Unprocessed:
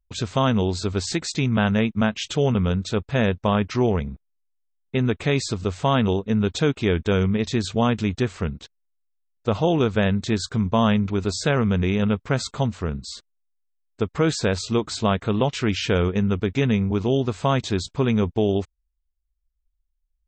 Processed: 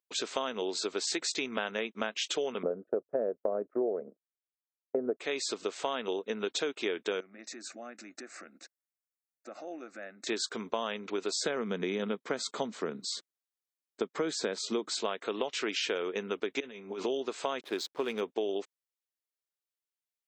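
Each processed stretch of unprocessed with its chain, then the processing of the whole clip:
2.63–5.20 s: gate -31 dBFS, range -27 dB + steep low-pass 1.4 kHz + resonant low shelf 770 Hz +7 dB, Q 3
7.20–10.27 s: compression 8:1, threshold -30 dBFS + static phaser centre 650 Hz, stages 8
11.35–14.91 s: high-pass 100 Hz + peaking EQ 170 Hz +12 dB 1.4 oct + band-stop 2.7 kHz, Q 9.4
16.60–17.06 s: compressor with a negative ratio -26 dBFS, ratio -0.5 + comb of notches 160 Hz
17.61–18.21 s: level-controlled noise filter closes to 1.4 kHz, open at -16.5 dBFS + hysteresis with a dead band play -37 dBFS
whole clip: high-pass 350 Hz 24 dB/octave; peaking EQ 850 Hz -4 dB 1.5 oct; compression, threshold -29 dBFS

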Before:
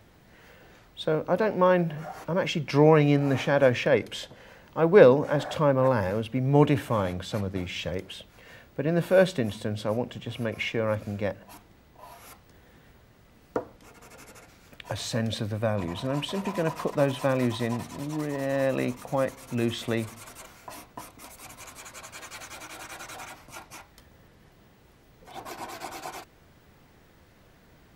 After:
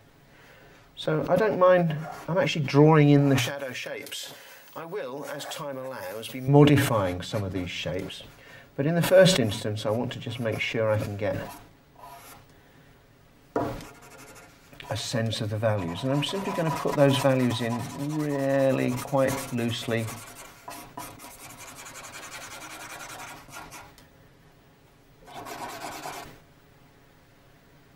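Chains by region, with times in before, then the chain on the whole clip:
3.38–6.48 s: RIAA curve recording + compression 10:1, threshold -32 dBFS
whole clip: hum notches 60/120/180 Hz; comb 7.2 ms, depth 53%; decay stretcher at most 70 dB/s

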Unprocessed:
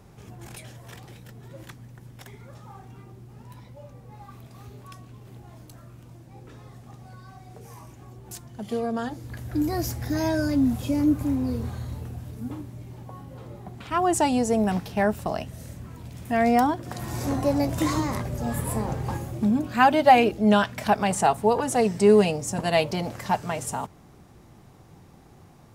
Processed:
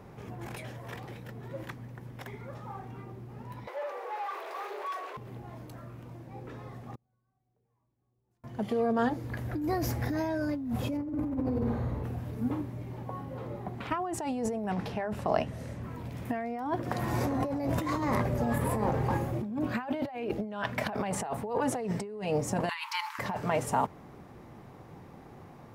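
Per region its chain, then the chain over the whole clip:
3.67–5.17 s: overdrive pedal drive 28 dB, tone 1 kHz, clips at -28.5 dBFS + elliptic high-pass 370 Hz, stop band 50 dB + tilt EQ +2.5 dB/octave
6.95–8.44 s: tilt EQ -2 dB/octave + inverted gate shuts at -36 dBFS, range -39 dB
10.97–12.04 s: treble shelf 2.2 kHz -11.5 dB + flutter echo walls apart 8.9 m, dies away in 0.7 s
14.69–15.83 s: low-pass 9.9 kHz + hum notches 50/100/150/200/250/300/350 Hz
22.69–23.19 s: brick-wall FIR high-pass 850 Hz + compressor with a negative ratio -36 dBFS
whole clip: compressor with a negative ratio -29 dBFS, ratio -1; graphic EQ 125/250/500/1000/2000/8000 Hz +3/+5/+7/+6/+6/-5 dB; trim -8.5 dB

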